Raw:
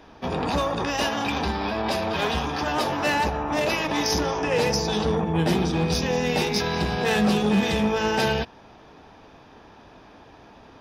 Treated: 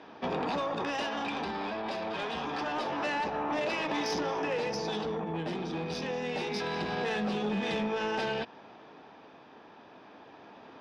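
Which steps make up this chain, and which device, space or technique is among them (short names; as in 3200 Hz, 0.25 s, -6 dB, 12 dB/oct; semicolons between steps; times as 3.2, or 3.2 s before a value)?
AM radio (BPF 200–4100 Hz; compressor 5:1, threshold -27 dBFS, peak gain reduction 8 dB; soft clip -22.5 dBFS, distortion -21 dB; tremolo 0.26 Hz, depth 32%)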